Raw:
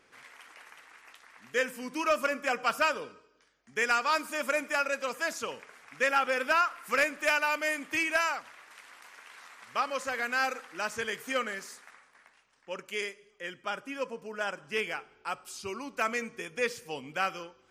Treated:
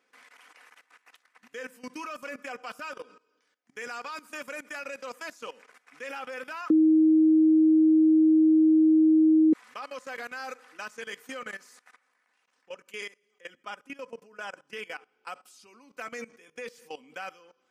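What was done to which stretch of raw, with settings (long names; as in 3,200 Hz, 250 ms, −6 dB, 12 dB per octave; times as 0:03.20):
0:06.70–0:09.53: beep over 315 Hz −7 dBFS
whole clip: high-pass filter 220 Hz 12 dB per octave; comb filter 4 ms, depth 44%; output level in coarse steps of 18 dB; level −1 dB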